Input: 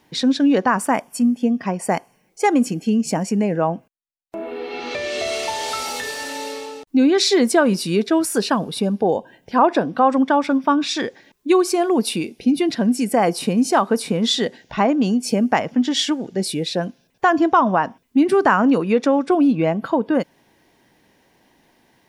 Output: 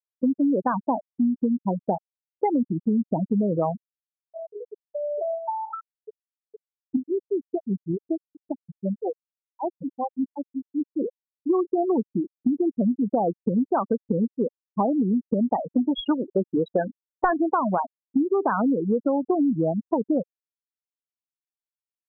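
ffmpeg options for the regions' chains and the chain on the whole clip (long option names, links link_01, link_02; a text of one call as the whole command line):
ffmpeg -i in.wav -filter_complex "[0:a]asettb=1/sr,asplit=3[link_01][link_02][link_03];[link_01]atrim=end=6.964[link_04];[link_02]atrim=start=6.96:end=10.92,asetpts=PTS-STARTPTS,afade=type=in:duration=0.004:curve=qsin,afade=type=out:start_time=3.956:duration=0.004:curve=qsin,acompressor=threshold=-19dB:ratio=4:attack=3.2:release=140:knee=1:detection=peak,acrossover=split=1200[link_05][link_06];[link_05]aeval=exprs='val(0)*(1-1/2+1/2*cos(2*PI*5.2*n/s))':channel_layout=same[link_07];[link_06]aeval=exprs='val(0)*(1-1/2-1/2*cos(2*PI*5.2*n/s))':channel_layout=same[link_08];[link_07][link_08]amix=inputs=2:normalize=0[link_09];[link_03]atrim=start=10.916[link_10];[link_04][link_09]acrossfade=duration=0.004:curve1=hsin:curve2=qsin[link_11];[link_11][link_10]acrossfade=duration=0.004:curve1=qsin:curve2=hsin,asettb=1/sr,asplit=3[link_12][link_13][link_14];[link_12]atrim=end=15.714[link_15];[link_13]atrim=start=15.71:end=17.34,asetpts=PTS-STARTPTS,afade=type=in:duration=0.004:curve=qsin,afade=type=out:start_time=1.626:duration=0.004:curve=qsin,highshelf=frequency=2900:gain=7,asplit=2[link_16][link_17];[link_17]highpass=frequency=720:poles=1,volume=17dB,asoftclip=type=tanh:threshold=-2.5dB[link_18];[link_16][link_18]amix=inputs=2:normalize=0,lowpass=frequency=6100:poles=1,volume=-6dB[link_19];[link_14]atrim=start=17.336[link_20];[link_15][link_19]acrossfade=duration=0.004:curve1=hsin:curve2=qsin[link_21];[link_21][link_20]acrossfade=duration=0.004:curve1=qsin:curve2=hsin,lowpass=1500,afftfilt=real='re*gte(hypot(re,im),0.316)':imag='im*gte(hypot(re,im),0.316)':win_size=1024:overlap=0.75,acompressor=threshold=-19dB:ratio=6" out.wav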